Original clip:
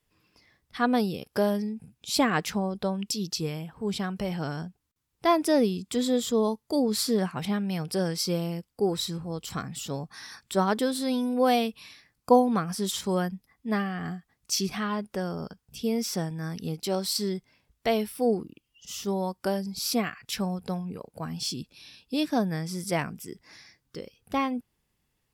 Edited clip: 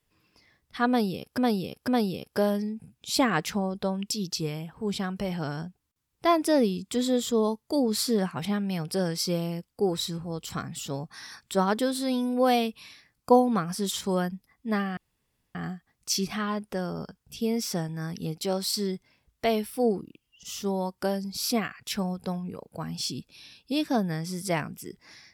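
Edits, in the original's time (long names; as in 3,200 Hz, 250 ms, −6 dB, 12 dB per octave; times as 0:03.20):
0:00.88–0:01.38: repeat, 3 plays
0:13.97: splice in room tone 0.58 s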